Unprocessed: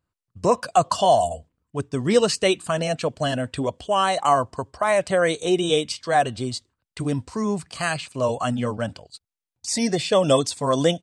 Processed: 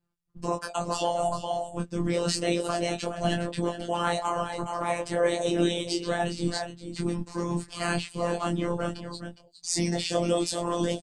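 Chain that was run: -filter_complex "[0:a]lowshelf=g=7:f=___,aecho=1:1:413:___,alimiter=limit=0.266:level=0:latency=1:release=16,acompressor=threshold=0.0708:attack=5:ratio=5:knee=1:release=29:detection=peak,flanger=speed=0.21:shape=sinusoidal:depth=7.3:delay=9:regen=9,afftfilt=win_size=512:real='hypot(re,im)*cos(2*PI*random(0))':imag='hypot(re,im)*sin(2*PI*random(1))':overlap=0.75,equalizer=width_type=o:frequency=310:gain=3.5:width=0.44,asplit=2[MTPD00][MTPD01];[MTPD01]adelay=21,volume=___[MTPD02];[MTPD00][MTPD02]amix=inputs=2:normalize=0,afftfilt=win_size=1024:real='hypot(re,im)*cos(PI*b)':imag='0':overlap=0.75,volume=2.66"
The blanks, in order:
72, 0.282, 0.596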